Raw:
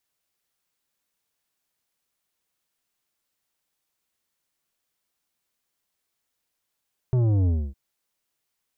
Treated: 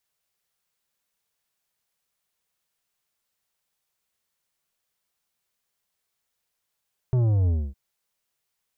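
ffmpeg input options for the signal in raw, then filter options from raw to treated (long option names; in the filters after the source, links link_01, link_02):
-f lavfi -i "aevalsrc='0.112*clip((0.61-t)/0.27,0,1)*tanh(3.16*sin(2*PI*130*0.61/log(65/130)*(exp(log(65/130)*t/0.61)-1)))/tanh(3.16)':duration=0.61:sample_rate=44100"
-af "equalizer=frequency=290:width=5.3:gain=-12"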